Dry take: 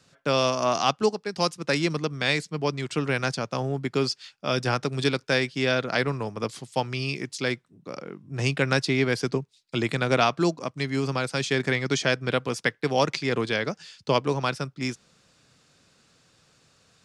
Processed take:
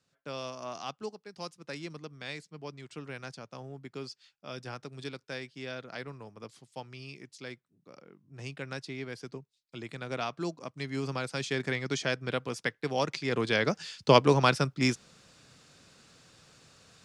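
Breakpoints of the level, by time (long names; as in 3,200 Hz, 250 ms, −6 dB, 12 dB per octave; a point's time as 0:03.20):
0:09.80 −16 dB
0:11.04 −7 dB
0:13.16 −7 dB
0:13.80 +3 dB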